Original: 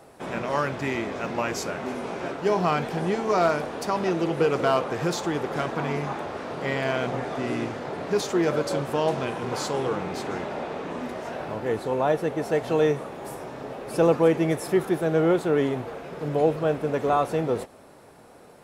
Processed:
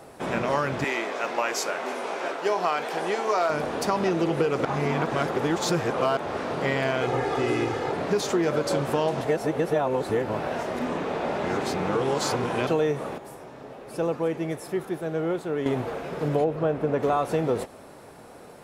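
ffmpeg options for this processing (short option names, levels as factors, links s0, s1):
-filter_complex "[0:a]asettb=1/sr,asplit=3[s0][s1][s2];[s0]atrim=end=0.844[s3];[s1]atrim=start=0.84:end=3.5,asetpts=PTS-STARTPTS,afade=t=in:d=0.004:c=qsin,afade=t=out:st=2.656:d=0.004:c=qsin,highpass=480[s4];[s2]atrim=start=3.496[s5];[s3][s4]acrossfade=d=0.004:c1=hsin:c2=qsin[s6];[s6][s5]acrossfade=d=0.004:c1=qsin:c2=hsin,asettb=1/sr,asplit=3[s7][s8][s9];[s7]atrim=end=7.014[s10];[s8]atrim=start=7.01:end=7.92,asetpts=PTS-STARTPTS,afade=t=in:d=0.004:c=qsin,afade=t=out:st=0.906:d=0.004:c=qsin,aecho=1:1:2.4:0.65,atrim=end_sample=40131[s11];[s9]atrim=start=7.916[s12];[s10][s11]acrossfade=d=0.004:c1=hsin:c2=qsin[s13];[s13][s12]acrossfade=d=0.004:c1=qsin:c2=hsin,asettb=1/sr,asplit=3[s14][s15][s16];[s14]atrim=end=16.444[s17];[s15]atrim=start=16.44:end=17.03,asetpts=PTS-STARTPTS,afade=t=in:d=0.004:c=qsin,afade=t=out:st=0.586:d=0.004:c=qsin,highshelf=f=3100:g=-11.5[s18];[s16]atrim=start=17.026[s19];[s17][s18]acrossfade=d=0.004:c1=hsin:c2=qsin[s20];[s20][s19]acrossfade=d=0.004:c1=qsin:c2=hsin,asplit=7[s21][s22][s23][s24][s25][s26][s27];[s21]atrim=end=4.652[s28];[s22]atrim=start=4.648:end=6.172,asetpts=PTS-STARTPTS,areverse[s29];[s23]atrim=start=6.168:end=9.212[s30];[s24]atrim=start=9.208:end=12.672,asetpts=PTS-STARTPTS,areverse[s31];[s25]atrim=start=12.668:end=13.182[s32];[s26]atrim=start=13.178:end=15.662,asetpts=PTS-STARTPTS,volume=0.316[s33];[s27]atrim=start=15.658[s34];[s28][s29]acrossfade=d=0.004:c1=hsin:c2=hsin[s35];[s35][s30]acrossfade=d=0.004:c1=hsin:c2=hsin[s36];[s36][s31]acrossfade=d=0.004:c1=hsin:c2=hsin[s37];[s37][s32]acrossfade=d=0.004:c1=hsin:c2=hsin[s38];[s38][s33]acrossfade=d=0.004:c1=hsin:c2=hsin[s39];[s39][s34]acrossfade=d=0.004:c1=hsin:c2=hsin,acompressor=threshold=0.0631:ratio=6,volume=1.58"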